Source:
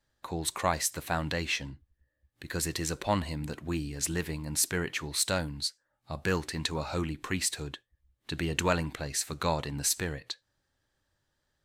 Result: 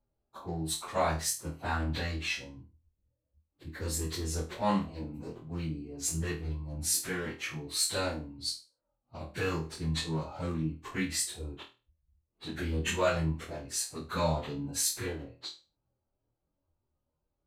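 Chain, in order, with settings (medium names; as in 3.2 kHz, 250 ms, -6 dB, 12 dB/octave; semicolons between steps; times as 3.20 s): local Wiener filter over 25 samples; plain phase-vocoder stretch 1.5×; flutter echo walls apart 4.3 m, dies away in 0.3 s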